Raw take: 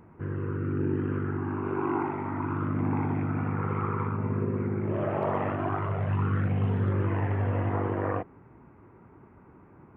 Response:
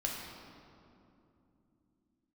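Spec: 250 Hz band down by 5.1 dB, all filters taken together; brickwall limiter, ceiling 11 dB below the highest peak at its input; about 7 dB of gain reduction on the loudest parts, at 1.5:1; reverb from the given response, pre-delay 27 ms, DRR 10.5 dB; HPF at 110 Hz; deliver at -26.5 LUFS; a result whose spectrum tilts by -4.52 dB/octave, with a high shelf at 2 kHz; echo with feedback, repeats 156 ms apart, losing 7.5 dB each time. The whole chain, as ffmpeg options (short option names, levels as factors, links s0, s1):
-filter_complex "[0:a]highpass=110,equalizer=f=250:t=o:g=-7,highshelf=f=2000:g=7.5,acompressor=threshold=0.00501:ratio=1.5,alimiter=level_in=3.76:limit=0.0631:level=0:latency=1,volume=0.266,aecho=1:1:156|312|468|624|780:0.422|0.177|0.0744|0.0312|0.0131,asplit=2[s0][s1];[1:a]atrim=start_sample=2205,adelay=27[s2];[s1][s2]afir=irnorm=-1:irlink=0,volume=0.2[s3];[s0][s3]amix=inputs=2:normalize=0,volume=6.68"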